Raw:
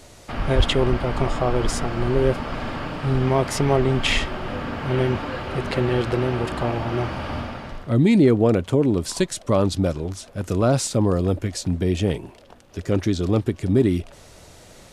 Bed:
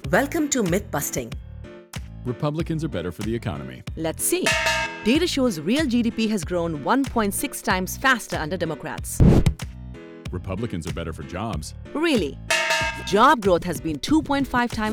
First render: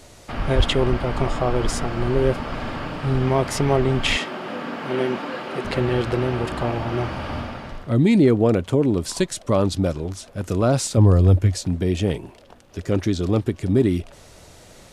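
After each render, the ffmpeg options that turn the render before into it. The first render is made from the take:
-filter_complex "[0:a]asettb=1/sr,asplit=3[a][b][c];[a]atrim=end=4.164[d];[b]atrim=start=4.16:end=5.65,asetpts=PTS-STARTPTS,afade=t=in:d=0.004:c=qsin,afade=t=out:st=1.486:d=0.004:c=qsin,highpass=f=180:w=0.5412,highpass=f=180:w=1.3066[e];[c]atrim=start=5.646[f];[d][e]acrossfade=d=0.004:c1=hsin:c2=qsin[g];[g][f]acrossfade=d=0.004:c1=qsin:c2=hsin,asettb=1/sr,asplit=3[h][i][j];[h]atrim=end=10.974[k];[i]atrim=start=10.97:end=11.58,asetpts=PTS-STARTPTS,afade=t=in:d=0.004:c=qsin,afade=t=out:st=0.606:d=0.004:c=qsin,equalizer=f=95:w=1.5:g=11[l];[j]atrim=start=11.576[m];[k][l]acrossfade=d=0.004:c1=hsin:c2=qsin[n];[n][m]acrossfade=d=0.004:c1=qsin:c2=hsin"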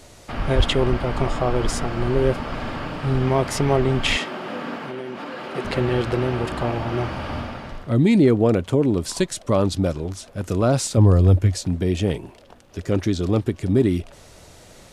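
-filter_complex "[0:a]asettb=1/sr,asplit=3[a][b][c];[a]atrim=end=4.764[d];[b]atrim=start=4.76:end=5.55,asetpts=PTS-STARTPTS,afade=t=in:d=0.004:c=qsin,afade=t=out:st=0.786:d=0.004:c=qsin,acompressor=threshold=-28dB:ratio=6:attack=3.2:release=140:knee=1:detection=peak[e];[c]atrim=start=5.546[f];[d][e]acrossfade=d=0.004:c1=hsin:c2=qsin[g];[g][f]acrossfade=d=0.004:c1=qsin:c2=hsin"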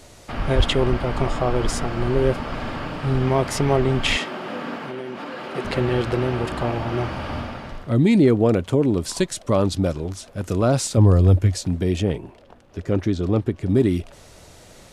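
-filter_complex "[0:a]asettb=1/sr,asplit=3[a][b][c];[a]atrim=end=12.024[d];[b]atrim=start=12.02:end=13.69,asetpts=PTS-STARTPTS,afade=t=in:d=0.004:c=qsin,afade=t=out:st=1.666:d=0.004:c=qsin,highshelf=f=3.5k:g=-10[e];[c]atrim=start=13.686[f];[d][e]acrossfade=d=0.004:c1=hsin:c2=qsin[g];[g][f]acrossfade=d=0.004:c1=qsin:c2=hsin"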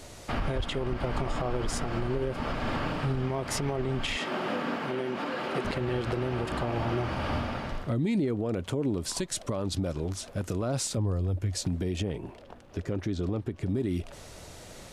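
-af "acompressor=threshold=-18dB:ratio=6,alimiter=limit=-20.5dB:level=0:latency=1:release=199"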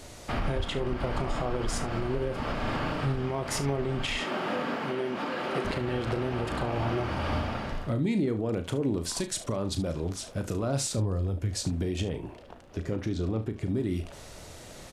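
-af "aecho=1:1:36|72:0.316|0.178"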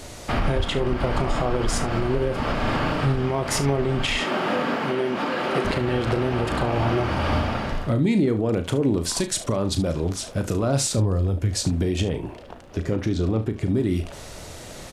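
-af "volume=7dB"

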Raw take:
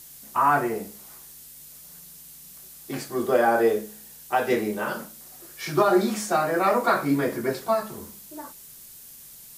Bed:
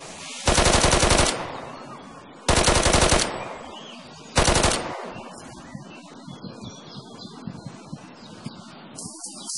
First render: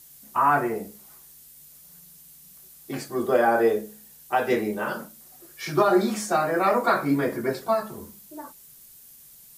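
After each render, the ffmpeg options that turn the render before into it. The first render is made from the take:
-af "afftdn=nr=6:nf=-46"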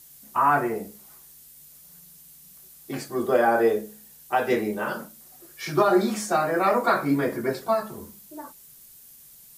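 -af anull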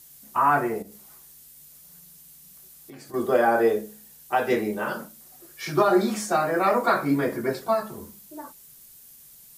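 -filter_complex "[0:a]asettb=1/sr,asplit=3[a][b][c];[a]atrim=end=0.824[d];[b]atrim=start=0.82:end=3.14,asetpts=PTS-STARTPTS,afade=t=in:d=0.004:c=qsin,afade=t=out:st=2.316:d=0.004:c=qsin,acompressor=threshold=-41dB:ratio=6:attack=3.2:release=140:knee=1:detection=peak[e];[c]atrim=start=3.136[f];[d][e]acrossfade=d=0.004:c1=hsin:c2=qsin[g];[g][f]acrossfade=d=0.004:c1=qsin:c2=hsin,asettb=1/sr,asplit=3[h][i][j];[h]atrim=end=6.424[k];[i]atrim=start=6.42:end=6.95,asetpts=PTS-STARTPTS,afade=t=in:d=0.004:c=qsin,afade=t=out:st=0.526:d=0.004:c=qsin,aeval=exprs='val(0)*gte(abs(val(0)),0.00355)':c=same[l];[j]atrim=start=6.946[m];[k][l]acrossfade=d=0.004:c1=hsin:c2=qsin[n];[n][m]acrossfade=d=0.004:c1=qsin:c2=hsin"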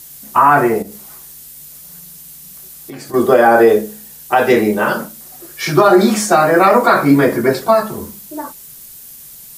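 -af "alimiter=level_in=13dB:limit=-1dB:release=50:level=0:latency=1"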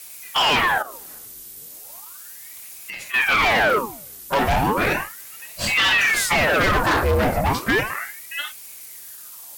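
-af "asoftclip=type=hard:threshold=-13dB,aeval=exprs='val(0)*sin(2*PI*1300*n/s+1300*0.85/0.35*sin(2*PI*0.35*n/s))':c=same"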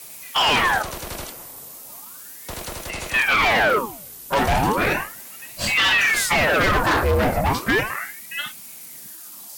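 -filter_complex "[1:a]volume=-15dB[a];[0:a][a]amix=inputs=2:normalize=0"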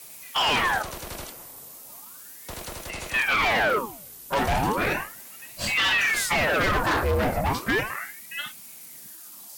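-af "volume=-4.5dB"

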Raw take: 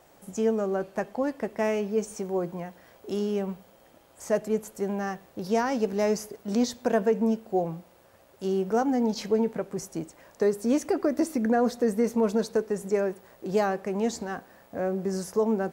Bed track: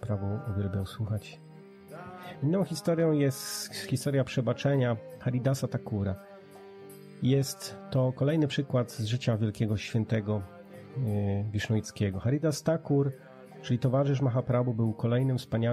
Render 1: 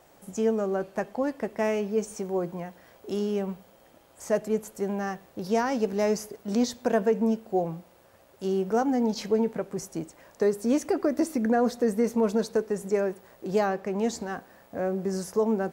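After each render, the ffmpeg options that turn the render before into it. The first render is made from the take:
-filter_complex "[0:a]asettb=1/sr,asplit=3[a][b][c];[a]atrim=end=13.584[d];[b]atrim=start=13.58:end=13.99,asetpts=PTS-STARTPTS,afade=t=in:d=0.004:c=qsin,afade=t=out:st=0.406:d=0.004:c=qsin,equalizer=f=9.9k:t=o:w=0.77:g=-7[e];[c]atrim=start=13.986[f];[d][e]acrossfade=d=0.004:c1=hsin:c2=qsin[g];[g][f]acrossfade=d=0.004:c1=qsin:c2=hsin"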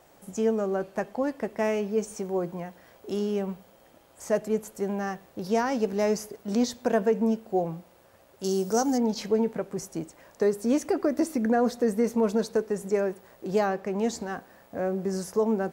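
-filter_complex "[0:a]asettb=1/sr,asplit=3[a][b][c];[a]atrim=end=8.444[d];[b]atrim=start=8.44:end=8.98,asetpts=PTS-STARTPTS,afade=t=in:d=0.004:c=qsin,afade=t=out:st=0.536:d=0.004:c=qsin,highshelf=f=3.7k:t=q:w=1.5:g=12.5[e];[c]atrim=start=8.976[f];[d][e]acrossfade=d=0.004:c1=hsin:c2=qsin[g];[g][f]acrossfade=d=0.004:c1=qsin:c2=hsin"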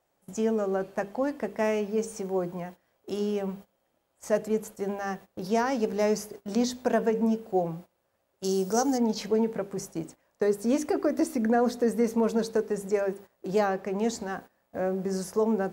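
-af "bandreject=f=50:t=h:w=6,bandreject=f=100:t=h:w=6,bandreject=f=150:t=h:w=6,bandreject=f=200:t=h:w=6,bandreject=f=250:t=h:w=6,bandreject=f=300:t=h:w=6,bandreject=f=350:t=h:w=6,bandreject=f=400:t=h:w=6,bandreject=f=450:t=h:w=6,agate=range=-17dB:threshold=-43dB:ratio=16:detection=peak"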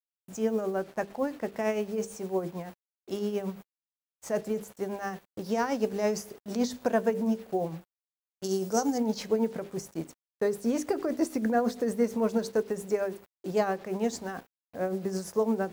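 -af "acrusher=bits=7:mix=0:aa=0.5,tremolo=f=8.9:d=0.52"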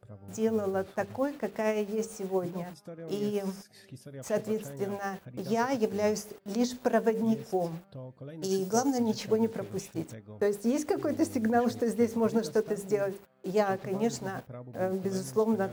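-filter_complex "[1:a]volume=-17dB[a];[0:a][a]amix=inputs=2:normalize=0"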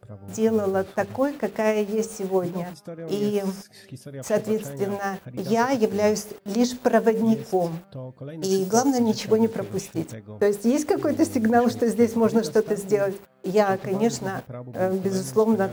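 -af "volume=7dB"

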